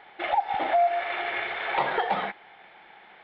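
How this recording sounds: noise floor -52 dBFS; spectral tilt 0.0 dB/octave

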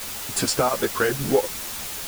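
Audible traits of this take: chopped level 4.2 Hz, depth 65%, duty 85%; a quantiser's noise floor 6-bit, dither triangular; a shimmering, thickened sound

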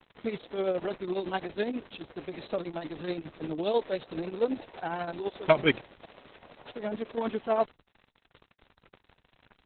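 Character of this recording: a quantiser's noise floor 8-bit, dither none; tremolo triangle 12 Hz, depth 65%; Opus

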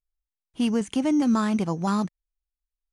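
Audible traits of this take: noise floor -90 dBFS; spectral tilt -6.0 dB/octave

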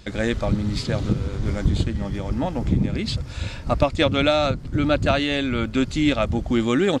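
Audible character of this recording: noise floor -35 dBFS; spectral tilt -5.0 dB/octave

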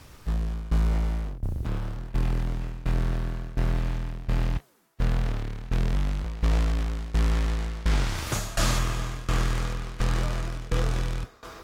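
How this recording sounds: a quantiser's noise floor 10-bit, dither triangular; tremolo saw down 1.4 Hz, depth 90%; AAC

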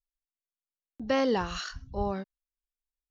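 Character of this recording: noise floor -96 dBFS; spectral tilt -4.0 dB/octave

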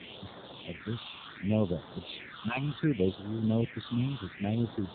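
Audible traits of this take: random-step tremolo; a quantiser's noise floor 6-bit, dither triangular; phasing stages 6, 0.68 Hz, lowest notch 480–2500 Hz; AMR-NB

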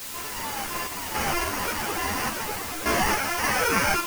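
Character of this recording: aliases and images of a low sample rate 3.8 kHz, jitter 0%; random-step tremolo, depth 75%; a quantiser's noise floor 6-bit, dither triangular; a shimmering, thickened sound

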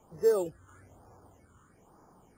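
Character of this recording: phasing stages 8, 1.1 Hz, lowest notch 680–2900 Hz

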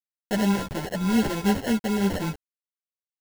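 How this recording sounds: a quantiser's noise floor 6-bit, dither none; random-step tremolo 3.5 Hz; aliases and images of a low sample rate 1.2 kHz, jitter 0%; a shimmering, thickened sound

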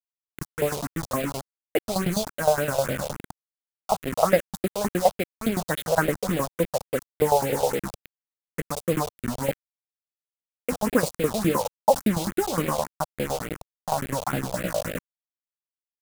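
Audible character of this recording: tremolo saw down 9.7 Hz, depth 85%; a quantiser's noise floor 6-bit, dither none; phasing stages 4, 3.5 Hz, lowest notch 280–1000 Hz

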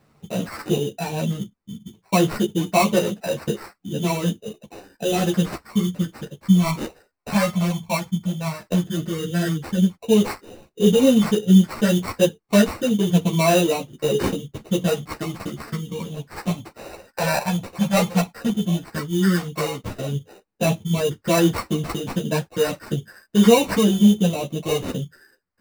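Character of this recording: phasing stages 6, 0.1 Hz, lowest notch 390–3800 Hz; aliases and images of a low sample rate 3.3 kHz, jitter 0%; a shimmering, thickened sound

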